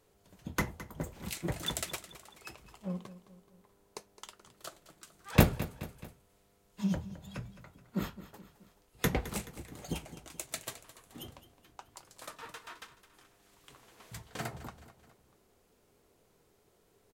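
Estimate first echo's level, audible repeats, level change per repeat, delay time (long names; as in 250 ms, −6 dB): −15.0 dB, 3, −6.0 dB, 214 ms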